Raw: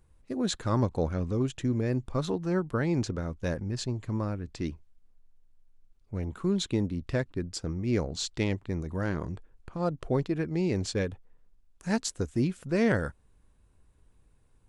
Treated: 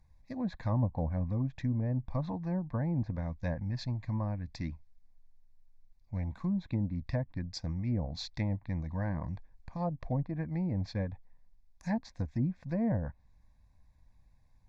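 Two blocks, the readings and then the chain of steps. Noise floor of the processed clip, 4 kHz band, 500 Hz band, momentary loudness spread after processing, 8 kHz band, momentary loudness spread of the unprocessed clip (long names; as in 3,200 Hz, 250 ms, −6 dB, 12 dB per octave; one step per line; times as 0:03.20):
−63 dBFS, −9.5 dB, −10.0 dB, 8 LU, −18.0 dB, 8 LU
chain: treble cut that deepens with the level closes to 620 Hz, closed at −22.5 dBFS
phaser with its sweep stopped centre 2,000 Hz, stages 8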